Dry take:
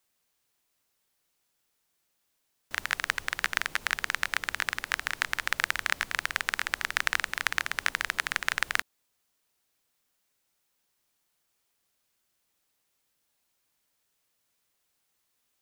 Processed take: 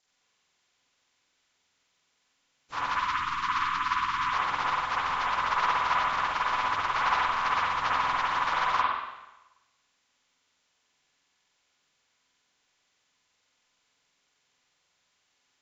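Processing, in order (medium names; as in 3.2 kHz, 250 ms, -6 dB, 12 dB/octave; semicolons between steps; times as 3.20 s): frequency axis rescaled in octaves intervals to 76%; 2.86–4.33 s: elliptic band-stop 340–1000 Hz, stop band 40 dB; spring tank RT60 1 s, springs 47/54/58 ms, chirp 50 ms, DRR -4.5 dB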